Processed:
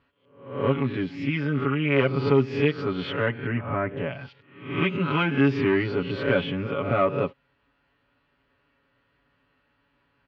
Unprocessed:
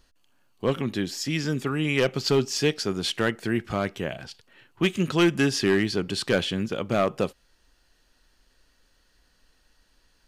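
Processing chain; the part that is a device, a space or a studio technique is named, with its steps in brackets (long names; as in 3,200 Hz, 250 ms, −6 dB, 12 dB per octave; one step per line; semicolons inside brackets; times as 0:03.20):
peak hold with a rise ahead of every peak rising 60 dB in 0.56 s
bass cabinet (loudspeaker in its box 68–2,400 Hz, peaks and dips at 160 Hz −5 dB, 320 Hz −5 dB, 450 Hz −4 dB, 720 Hz −7 dB, 1,700 Hz −7 dB)
0:03.25–0:03.96: low-pass filter 4,000 Hz → 2,000 Hz 24 dB per octave
comb filter 7.1 ms, depth 98%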